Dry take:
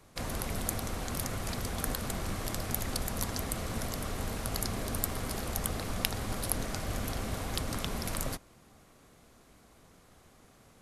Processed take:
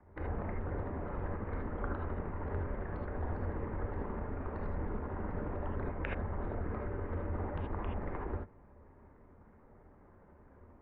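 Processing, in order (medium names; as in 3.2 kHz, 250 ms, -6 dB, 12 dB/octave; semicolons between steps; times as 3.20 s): resonances exaggerated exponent 1.5; peaking EQ 120 Hz +10.5 dB 0.4 oct; mistuned SSB -200 Hz 150–2100 Hz; gated-style reverb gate 100 ms rising, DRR -0.5 dB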